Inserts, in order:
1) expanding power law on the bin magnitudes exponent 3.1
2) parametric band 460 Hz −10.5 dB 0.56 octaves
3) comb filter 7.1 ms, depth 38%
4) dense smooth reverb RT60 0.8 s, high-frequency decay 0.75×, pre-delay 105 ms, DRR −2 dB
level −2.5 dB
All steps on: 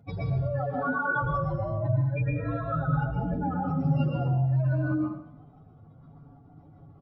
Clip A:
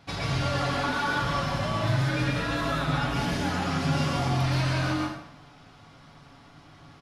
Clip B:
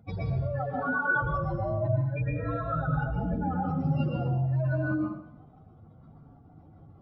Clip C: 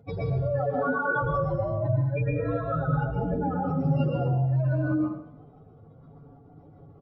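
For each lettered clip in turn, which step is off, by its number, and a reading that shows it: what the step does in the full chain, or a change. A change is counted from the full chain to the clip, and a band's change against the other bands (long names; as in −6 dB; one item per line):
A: 1, change in momentary loudness spread −2 LU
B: 3, 2 kHz band +3.5 dB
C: 2, 500 Hz band +5.0 dB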